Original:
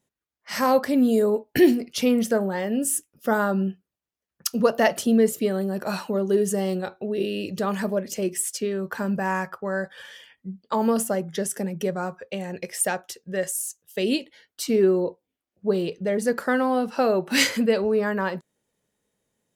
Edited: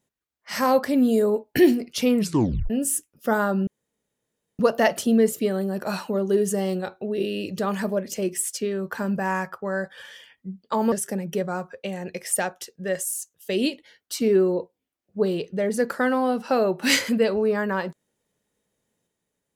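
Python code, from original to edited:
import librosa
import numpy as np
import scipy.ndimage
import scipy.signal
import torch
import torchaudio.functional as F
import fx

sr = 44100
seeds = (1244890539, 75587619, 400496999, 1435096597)

y = fx.edit(x, sr, fx.tape_stop(start_s=2.17, length_s=0.53),
    fx.room_tone_fill(start_s=3.67, length_s=0.92),
    fx.cut(start_s=10.92, length_s=0.48), tone=tone)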